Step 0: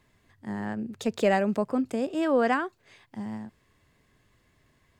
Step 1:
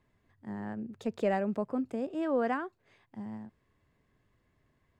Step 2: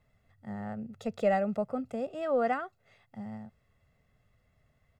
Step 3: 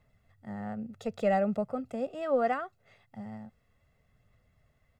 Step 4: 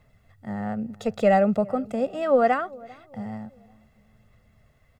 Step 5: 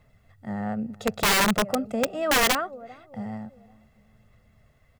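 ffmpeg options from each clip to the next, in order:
-af "highshelf=f=2.6k:g=-11,volume=-5.5dB"
-af "aecho=1:1:1.5:0.72"
-af "aphaser=in_gain=1:out_gain=1:delay=4.2:decay=0.23:speed=0.69:type=sinusoidal"
-filter_complex "[0:a]asplit=2[a][b];[b]adelay=396,lowpass=f=970:p=1,volume=-21.5dB,asplit=2[c][d];[d]adelay=396,lowpass=f=970:p=1,volume=0.46,asplit=2[e][f];[f]adelay=396,lowpass=f=970:p=1,volume=0.46[g];[a][c][e][g]amix=inputs=4:normalize=0,volume=8dB"
-af "aeval=exprs='(mod(5.96*val(0)+1,2)-1)/5.96':c=same"

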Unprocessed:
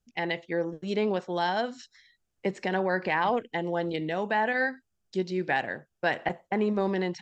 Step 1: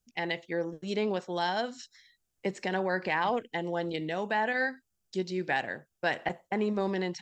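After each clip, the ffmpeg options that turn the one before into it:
-af "highshelf=f=5.3k:g=10,volume=-3dB"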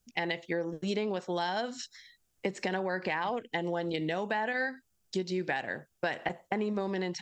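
-af "acompressor=threshold=-34dB:ratio=6,volume=5.5dB"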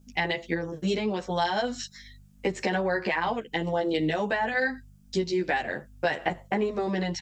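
-filter_complex "[0:a]aeval=exprs='val(0)+0.00158*(sin(2*PI*50*n/s)+sin(2*PI*2*50*n/s)/2+sin(2*PI*3*50*n/s)/3+sin(2*PI*4*50*n/s)/4+sin(2*PI*5*50*n/s)/5)':c=same,asplit=2[a][b];[b]adelay=11.5,afreqshift=-2.6[c];[a][c]amix=inputs=2:normalize=1,volume=8dB"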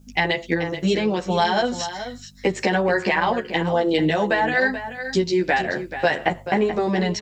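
-af "aecho=1:1:432:0.282,volume=6.5dB"

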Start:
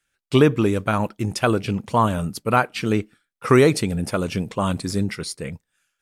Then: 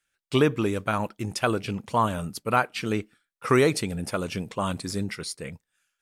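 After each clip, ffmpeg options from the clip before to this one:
-af "lowshelf=f=470:g=-4.5,volume=-3dB"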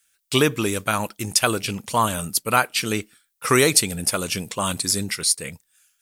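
-af "crystalizer=i=5:c=0,volume=1dB"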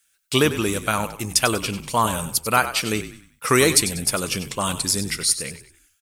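-filter_complex "[0:a]asplit=5[a][b][c][d][e];[b]adelay=96,afreqshift=-44,volume=-12dB[f];[c]adelay=192,afreqshift=-88,volume=-20.4dB[g];[d]adelay=288,afreqshift=-132,volume=-28.8dB[h];[e]adelay=384,afreqshift=-176,volume=-37.2dB[i];[a][f][g][h][i]amix=inputs=5:normalize=0"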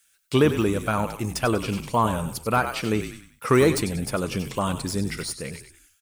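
-af "deesser=0.9,volume=2dB"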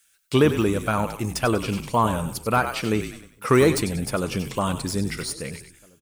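-filter_complex "[0:a]asplit=2[a][b];[b]adelay=1691,volume=-29dB,highshelf=f=4k:g=-38[c];[a][c]amix=inputs=2:normalize=0,volume=1dB"

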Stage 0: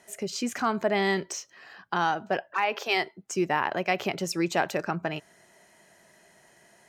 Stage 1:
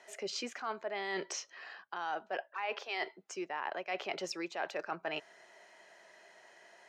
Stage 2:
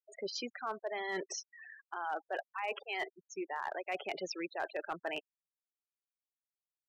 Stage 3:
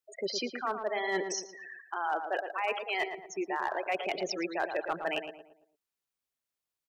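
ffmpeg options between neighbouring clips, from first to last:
-filter_complex "[0:a]acrossover=split=360 6000:gain=0.0891 1 0.0891[a][b][c];[a][b][c]amix=inputs=3:normalize=0,areverse,acompressor=threshold=-35dB:ratio=10,areverse,volume=1dB"
-af "afftfilt=real='re*gte(hypot(re,im),0.0141)':imag='im*gte(hypot(re,im),0.0141)':win_size=1024:overlap=0.75,volume=28dB,asoftclip=hard,volume=-28dB"
-filter_complex "[0:a]asplit=2[a][b];[b]adelay=113,lowpass=f=1.6k:p=1,volume=-6.5dB,asplit=2[c][d];[d]adelay=113,lowpass=f=1.6k:p=1,volume=0.42,asplit=2[e][f];[f]adelay=113,lowpass=f=1.6k:p=1,volume=0.42,asplit=2[g][h];[h]adelay=113,lowpass=f=1.6k:p=1,volume=0.42,asplit=2[i][j];[j]adelay=113,lowpass=f=1.6k:p=1,volume=0.42[k];[a][c][e][g][i][k]amix=inputs=6:normalize=0,volume=5.5dB"

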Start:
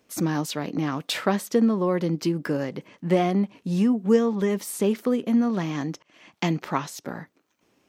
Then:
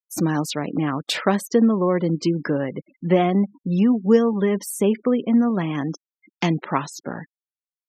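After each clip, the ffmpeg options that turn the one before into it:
-af "afftfilt=real='re*gte(hypot(re,im),0.0141)':imag='im*gte(hypot(re,im),0.0141)':win_size=1024:overlap=0.75,volume=3.5dB"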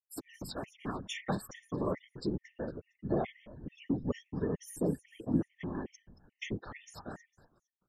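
-filter_complex "[0:a]asplit=4[a][b][c][d];[b]adelay=228,afreqshift=-130,volume=-16.5dB[e];[c]adelay=456,afreqshift=-260,volume=-25.1dB[f];[d]adelay=684,afreqshift=-390,volume=-33.8dB[g];[a][e][f][g]amix=inputs=4:normalize=0,afftfilt=real='hypot(re,im)*cos(2*PI*random(0))':imag='hypot(re,im)*sin(2*PI*random(1))':win_size=512:overlap=0.75,afftfilt=real='re*gt(sin(2*PI*2.3*pts/sr)*(1-2*mod(floor(b*sr/1024/1800),2)),0)':imag='im*gt(sin(2*PI*2.3*pts/sr)*(1-2*mod(floor(b*sr/1024/1800),2)),0)':win_size=1024:overlap=0.75,volume=-6.5dB"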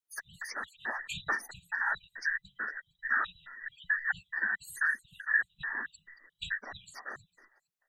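-af "afftfilt=real='real(if(between(b,1,1012),(2*floor((b-1)/92)+1)*92-b,b),0)':imag='imag(if(between(b,1,1012),(2*floor((b-1)/92)+1)*92-b,b),0)*if(between(b,1,1012),-1,1)':win_size=2048:overlap=0.75,volume=1.5dB"

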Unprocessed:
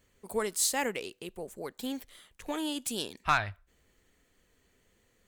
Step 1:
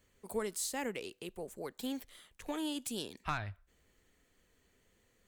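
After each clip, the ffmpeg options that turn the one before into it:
-filter_complex "[0:a]acrossover=split=400[a][b];[b]acompressor=threshold=-38dB:ratio=2[c];[a][c]amix=inputs=2:normalize=0,volume=-2.5dB"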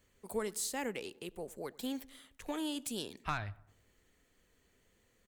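-filter_complex "[0:a]asplit=2[a][b];[b]adelay=97,lowpass=f=1.5k:p=1,volume=-21dB,asplit=2[c][d];[d]adelay=97,lowpass=f=1.5k:p=1,volume=0.54,asplit=2[e][f];[f]adelay=97,lowpass=f=1.5k:p=1,volume=0.54,asplit=2[g][h];[h]adelay=97,lowpass=f=1.5k:p=1,volume=0.54[i];[a][c][e][g][i]amix=inputs=5:normalize=0"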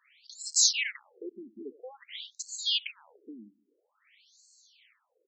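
-af "highpass=190,equalizer=f=230:t=q:w=4:g=5,equalizer=f=670:t=q:w=4:g=-8,equalizer=f=1.3k:t=q:w=4:g=6,equalizer=f=2.2k:t=q:w=4:g=8,lowpass=f=8k:w=0.5412,lowpass=f=8k:w=1.3066,aexciter=amount=2.9:drive=8.3:freq=2.5k,afftfilt=real='re*between(b*sr/1024,250*pow(5900/250,0.5+0.5*sin(2*PI*0.5*pts/sr))/1.41,250*pow(5900/250,0.5+0.5*sin(2*PI*0.5*pts/sr))*1.41)':imag='im*between(b*sr/1024,250*pow(5900/250,0.5+0.5*sin(2*PI*0.5*pts/sr))/1.41,250*pow(5900/250,0.5+0.5*sin(2*PI*0.5*pts/sr))*1.41)':win_size=1024:overlap=0.75,volume=6.5dB"

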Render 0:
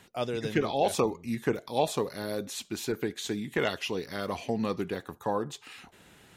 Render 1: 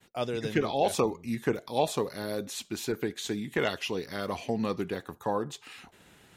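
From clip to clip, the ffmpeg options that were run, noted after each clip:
-af "agate=range=-33dB:threshold=-54dB:ratio=3:detection=peak"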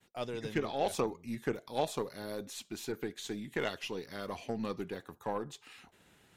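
-af "aeval=exprs='0.2*(cos(1*acos(clip(val(0)/0.2,-1,1)))-cos(1*PI/2))+0.00891*(cos(3*acos(clip(val(0)/0.2,-1,1)))-cos(3*PI/2))+0.00794*(cos(4*acos(clip(val(0)/0.2,-1,1)))-cos(4*PI/2))+0.0112*(cos(6*acos(clip(val(0)/0.2,-1,1)))-cos(6*PI/2))':c=same,volume=-5.5dB"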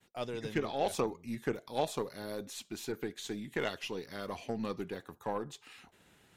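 -af anull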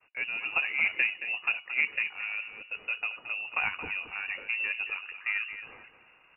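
-af "aecho=1:1:223|446|669:0.282|0.062|0.0136,lowpass=f=2.5k:t=q:w=0.5098,lowpass=f=2.5k:t=q:w=0.6013,lowpass=f=2.5k:t=q:w=0.9,lowpass=f=2.5k:t=q:w=2.563,afreqshift=-2900,volume=4.5dB"

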